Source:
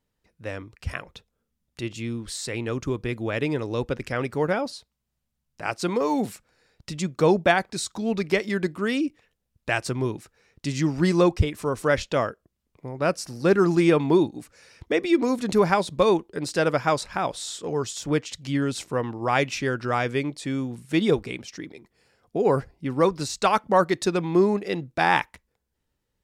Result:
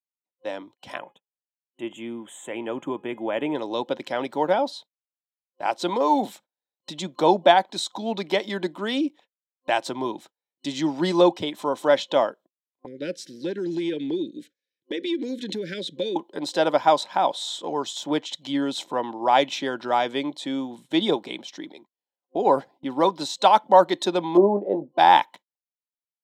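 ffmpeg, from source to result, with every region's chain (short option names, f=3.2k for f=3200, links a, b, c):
-filter_complex "[0:a]asettb=1/sr,asplit=3[a][b][c];[a]atrim=end=0.984[d];[b]atrim=start=0.98:end=3.55,asetpts=PTS-STARTPTS,afade=t=in:d=0.004:c=qsin,afade=t=out:st=2.566:d=0.004:c=qsin,asuperstop=centerf=4700:order=8:qfactor=1.3,highshelf=f=4.3k:g=-4.5,bandreject=f=417.7:t=h:w=4,bandreject=f=835.4:t=h:w=4,bandreject=f=1.2531k:t=h:w=4,bandreject=f=1.6708k:t=h:w=4,bandreject=f=2.0885k:t=h:w=4,bandreject=f=2.5062k:t=h:w=4,bandreject=f=2.9239k:t=h:w=4,bandreject=f=3.3416k:t=h:w=4,bandreject=f=3.7593k:t=h:w=4,bandreject=f=4.177k:t=h:w=4[e];[c]atrim=start=3.546[f];[d][e]acrossfade=d=0.004:c1=hsin:c2=qsin[g];[g][f]acrossfade=d=0.004:c1=qsin:c2=hsin,asettb=1/sr,asplit=3[h][i][j];[h]atrim=end=12.864[k];[i]atrim=start=12.86:end=16.16,asetpts=PTS-STARTPTS,afade=t=in:d=0.004:c=qsin,afade=t=out:st=3.296:d=0.004:c=qsin,asuperstop=centerf=900:order=12:qfactor=0.87,highshelf=f=8.1k:g=-8.5,acompressor=threshold=-24dB:ratio=4:attack=3.2:release=140:knee=1:detection=peak[l];[j]atrim=start=16.156[m];[k][l]acrossfade=d=0.004:c1=hsin:c2=qsin[n];[n][m]acrossfade=d=0.004:c1=qsin:c2=hsin,asettb=1/sr,asplit=3[o][p][q];[o]atrim=end=24.374[r];[p]atrim=start=24.37:end=24.98,asetpts=PTS-STARTPTS,afade=t=in:d=0.004:c=qsin,afade=t=out:st=0.606:d=0.004:c=qsin,lowpass=f=570:t=q:w=2.4,asplit=2[s][t];[t]adelay=20,volume=-10dB[u];[s][u]amix=inputs=2:normalize=0,atrim=end_sample=26901[v];[q]atrim=start=24.976[w];[r][v]acrossfade=d=0.004:c1=hsin:c2=qsin[x];[x][w]acrossfade=d=0.004:c1=qsin:c2=hsin,highpass=f=190:w=0.5412,highpass=f=190:w=1.3066,agate=range=-34dB:threshold=-47dB:ratio=16:detection=peak,superequalizer=6b=1.58:8b=2.51:9b=3.55:13b=3.16:16b=0.631,volume=-3dB"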